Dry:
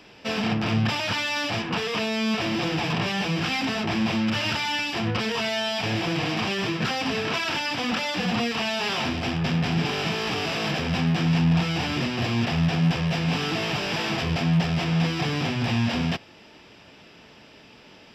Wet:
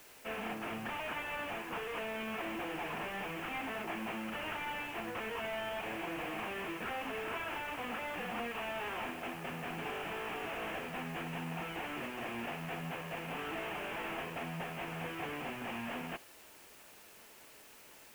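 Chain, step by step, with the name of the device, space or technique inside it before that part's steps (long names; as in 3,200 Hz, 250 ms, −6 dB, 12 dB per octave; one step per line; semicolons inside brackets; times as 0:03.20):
army field radio (band-pass filter 360–3,400 Hz; variable-slope delta modulation 16 kbit/s; white noise bed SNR 18 dB)
level −9 dB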